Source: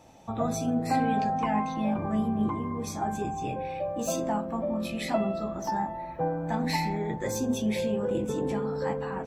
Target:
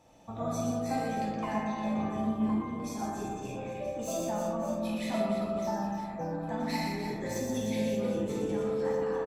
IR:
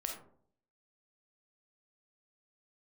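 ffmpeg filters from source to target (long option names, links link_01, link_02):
-filter_complex "[0:a]aecho=1:1:120|300|570|975|1582:0.631|0.398|0.251|0.158|0.1[link_01];[1:a]atrim=start_sample=2205,asetrate=41013,aresample=44100[link_02];[link_01][link_02]afir=irnorm=-1:irlink=0,volume=-6dB"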